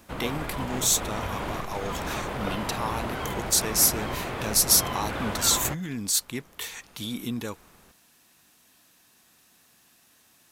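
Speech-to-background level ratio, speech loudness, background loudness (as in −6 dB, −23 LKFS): 6.5 dB, −26.0 LKFS, −32.5 LKFS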